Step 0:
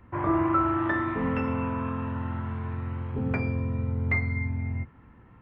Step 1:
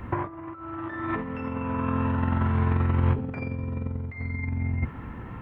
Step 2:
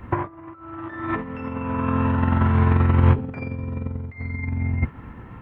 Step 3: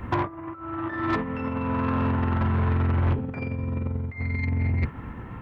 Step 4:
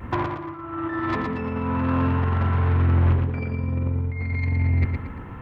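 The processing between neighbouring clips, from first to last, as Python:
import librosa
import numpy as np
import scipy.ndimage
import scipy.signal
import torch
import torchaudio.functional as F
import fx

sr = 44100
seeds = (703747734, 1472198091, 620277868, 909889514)

y1 = fx.over_compress(x, sr, threshold_db=-34.0, ratio=-0.5)
y1 = F.gain(torch.from_numpy(y1), 8.0).numpy()
y2 = fx.upward_expand(y1, sr, threshold_db=-41.0, expansion=1.5)
y2 = F.gain(torch.from_numpy(y2), 8.0).numpy()
y3 = fx.rider(y2, sr, range_db=4, speed_s=2.0)
y3 = 10.0 ** (-18.5 / 20.0) * np.tanh(y3 / 10.0 ** (-18.5 / 20.0))
y4 = fx.vibrato(y3, sr, rate_hz=0.53, depth_cents=19.0)
y4 = fx.echo_feedback(y4, sr, ms=115, feedback_pct=38, wet_db=-5.0)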